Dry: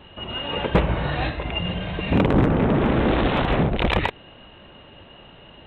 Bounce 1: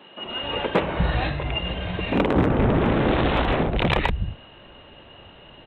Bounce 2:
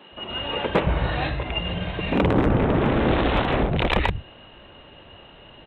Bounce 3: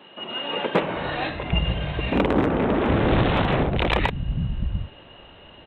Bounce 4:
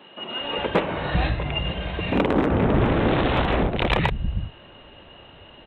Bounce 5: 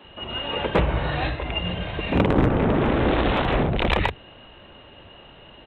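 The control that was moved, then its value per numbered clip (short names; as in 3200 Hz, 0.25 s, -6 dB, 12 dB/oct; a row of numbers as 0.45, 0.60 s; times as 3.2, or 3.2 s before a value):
bands offset in time, time: 250, 120, 780, 400, 40 ms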